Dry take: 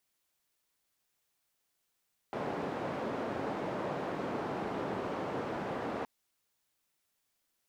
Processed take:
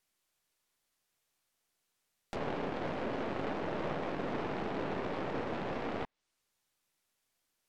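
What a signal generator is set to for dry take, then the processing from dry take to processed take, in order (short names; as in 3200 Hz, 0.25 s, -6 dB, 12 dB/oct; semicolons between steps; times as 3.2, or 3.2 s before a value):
noise band 160–710 Hz, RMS -36.5 dBFS 3.72 s
tracing distortion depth 0.49 ms; treble ducked by the level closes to 2700 Hz, closed at -36 dBFS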